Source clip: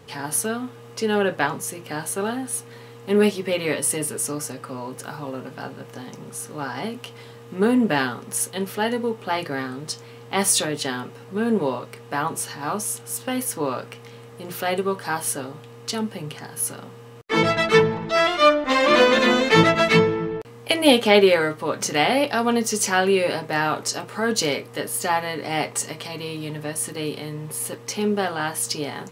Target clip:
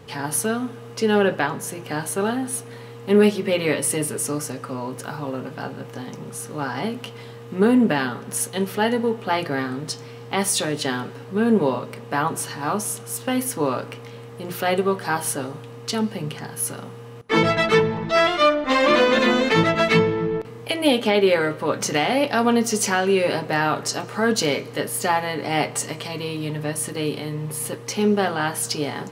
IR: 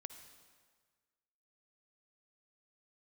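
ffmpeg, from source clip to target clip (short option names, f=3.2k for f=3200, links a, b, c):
-filter_complex "[0:a]alimiter=limit=-9.5dB:level=0:latency=1:release=416,asplit=2[a][b];[1:a]atrim=start_sample=2205,lowpass=5.8k,lowshelf=f=430:g=7[c];[b][c]afir=irnorm=-1:irlink=0,volume=-5.5dB[d];[a][d]amix=inputs=2:normalize=0"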